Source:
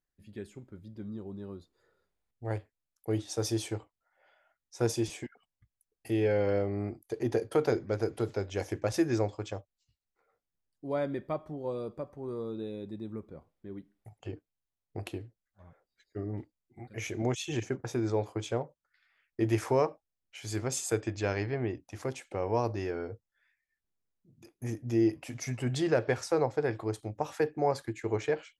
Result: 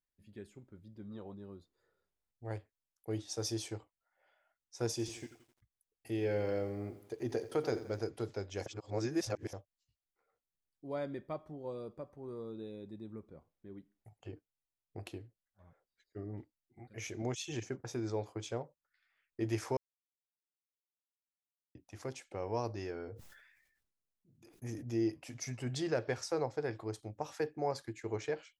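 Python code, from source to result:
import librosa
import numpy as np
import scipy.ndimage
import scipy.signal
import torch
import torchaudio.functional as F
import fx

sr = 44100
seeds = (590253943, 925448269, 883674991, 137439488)

y = fx.spec_box(x, sr, start_s=1.11, length_s=0.23, low_hz=450.0, high_hz=4200.0, gain_db=10)
y = fx.echo_crushed(y, sr, ms=86, feedback_pct=55, bits=9, wet_db=-13.5, at=(4.91, 7.99))
y = fx.sustainer(y, sr, db_per_s=52.0, at=(23.06, 24.97), fade=0.02)
y = fx.edit(y, sr, fx.reverse_span(start_s=8.66, length_s=0.87),
    fx.silence(start_s=19.77, length_s=1.98), tone=tone)
y = fx.dynamic_eq(y, sr, hz=5300.0, q=1.5, threshold_db=-58.0, ratio=4.0, max_db=6)
y = F.gain(torch.from_numpy(y), -7.0).numpy()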